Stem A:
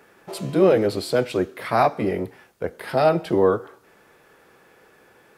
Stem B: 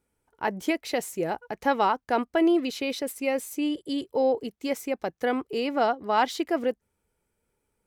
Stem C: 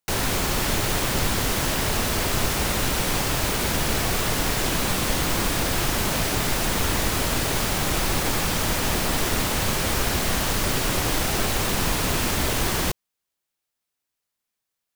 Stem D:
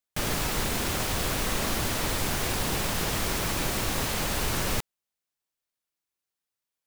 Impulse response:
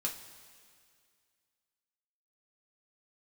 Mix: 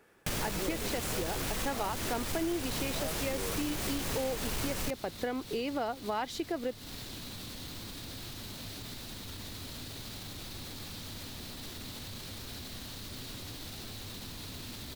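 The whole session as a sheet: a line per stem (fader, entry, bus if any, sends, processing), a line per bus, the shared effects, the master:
−8.5 dB, 0.00 s, no send, automatic ducking −6 dB, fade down 0.25 s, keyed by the second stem
+1.0 dB, 0.00 s, no send, no processing
−18.0 dB, 2.45 s, no send, graphic EQ with 15 bands 100 Hz +9 dB, 250 Hz +7 dB, 4,000 Hz +11 dB, 16,000 Hz +4 dB; brickwall limiter −15.5 dBFS, peak gain reduction 9.5 dB
+3.0 dB, 0.10 s, no send, soft clipping −25 dBFS, distortion −14 dB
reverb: not used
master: parametric band 960 Hz −2.5 dB 2.1 octaves; downward compressor 4 to 1, threshold −32 dBFS, peak gain reduction 12.5 dB

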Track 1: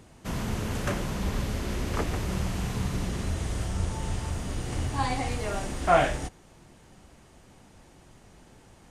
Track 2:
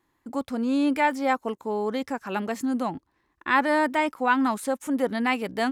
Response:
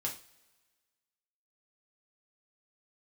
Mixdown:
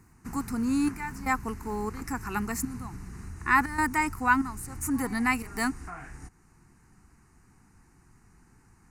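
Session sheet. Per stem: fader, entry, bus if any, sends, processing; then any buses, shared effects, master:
−3.5 dB, 0.00 s, no send, downward compressor 2.5 to 1, threshold −36 dBFS, peak gain reduction 13.5 dB
+0.5 dB, 0.00 s, no send, gate pattern "x.xxxxx...xxxx" 119 BPM −12 dB; high-shelf EQ 3,600 Hz +12 dB; notch filter 1,600 Hz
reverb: not used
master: phaser with its sweep stopped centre 1,400 Hz, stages 4

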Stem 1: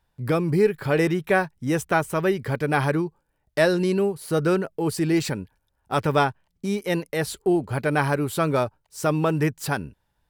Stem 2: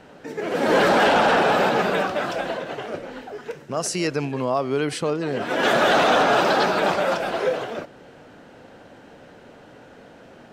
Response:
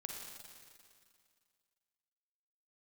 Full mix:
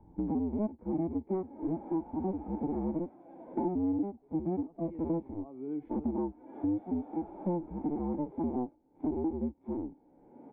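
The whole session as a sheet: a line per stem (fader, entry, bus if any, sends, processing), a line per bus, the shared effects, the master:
+1.5 dB, 0.00 s, no send, sub-harmonics by changed cycles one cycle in 2, inverted
−13.0 dB, 0.90 s, no send, tilt shelving filter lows −9 dB, about 1,200 Hz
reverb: not used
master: harmonic and percussive parts rebalanced percussive −17 dB; formant resonators in series u; multiband upward and downward compressor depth 100%

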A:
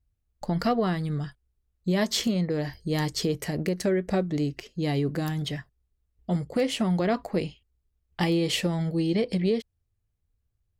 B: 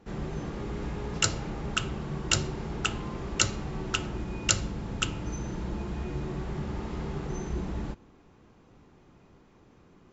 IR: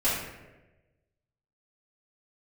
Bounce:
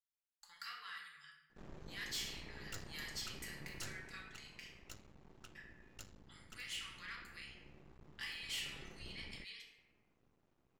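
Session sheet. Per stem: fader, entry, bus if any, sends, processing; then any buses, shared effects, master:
−15.5 dB, 0.00 s, muted 0:04.76–0:05.55, send −6.5 dB, inverse Chebyshev high-pass filter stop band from 700 Hz, stop band 40 dB
0:03.80 −14 dB → 0:04.44 −23.5 dB → 0:08.30 −23.5 dB → 0:08.77 −16.5 dB, 1.50 s, no send, half-wave rectification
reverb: on, RT60 1.1 s, pre-delay 4 ms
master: soft clipping −36 dBFS, distortion −13 dB

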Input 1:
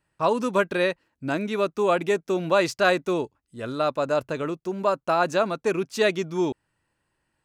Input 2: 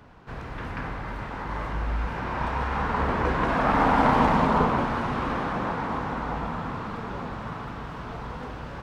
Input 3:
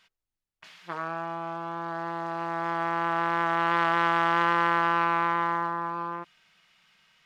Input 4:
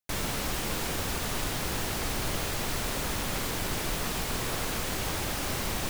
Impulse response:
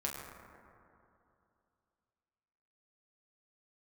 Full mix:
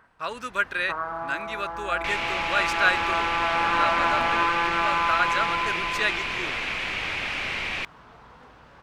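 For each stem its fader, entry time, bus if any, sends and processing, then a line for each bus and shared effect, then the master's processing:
−9.5 dB, 0.00 s, no send, drawn EQ curve 980 Hz 0 dB, 1,400 Hz +15 dB, 5,600 Hz +6 dB
−9.5 dB, 0.00 s, muted 0:04.43–0:06.52, no send, no processing
+1.5 dB, 0.00 s, send −3.5 dB, reverb reduction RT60 1.1 s; Butterworth low-pass 1,700 Hz 48 dB per octave; upward compression, threshold −57 dBFS
−0.5 dB, 1.95 s, no send, low-pass filter 3,500 Hz 12 dB per octave; parametric band 2,400 Hz +14.5 dB 0.87 octaves; envelope flattener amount 50%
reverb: on, RT60 2.7 s, pre-delay 7 ms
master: low-shelf EQ 470 Hz −9 dB

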